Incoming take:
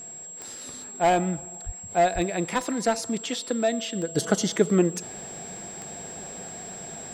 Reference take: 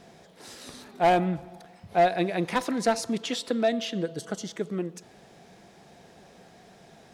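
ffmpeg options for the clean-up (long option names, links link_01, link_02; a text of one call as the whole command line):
ffmpeg -i in.wav -filter_complex "[0:a]adeclick=threshold=4,bandreject=frequency=7600:width=30,asplit=3[link_01][link_02][link_03];[link_01]afade=type=out:start_time=1.65:duration=0.02[link_04];[link_02]highpass=frequency=140:width=0.5412,highpass=frequency=140:width=1.3066,afade=type=in:start_time=1.65:duration=0.02,afade=type=out:start_time=1.77:duration=0.02[link_05];[link_03]afade=type=in:start_time=1.77:duration=0.02[link_06];[link_04][link_05][link_06]amix=inputs=3:normalize=0,asplit=3[link_07][link_08][link_09];[link_07]afade=type=out:start_time=2.14:duration=0.02[link_10];[link_08]highpass=frequency=140:width=0.5412,highpass=frequency=140:width=1.3066,afade=type=in:start_time=2.14:duration=0.02,afade=type=out:start_time=2.26:duration=0.02[link_11];[link_09]afade=type=in:start_time=2.26:duration=0.02[link_12];[link_10][link_11][link_12]amix=inputs=3:normalize=0,asetnsamples=nb_out_samples=441:pad=0,asendcmd='4.15 volume volume -10.5dB',volume=0dB" out.wav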